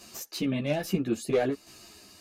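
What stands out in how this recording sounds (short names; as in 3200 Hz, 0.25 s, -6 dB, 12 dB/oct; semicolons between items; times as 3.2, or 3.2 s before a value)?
tremolo saw down 1.2 Hz, depth 55%; a shimmering, thickened sound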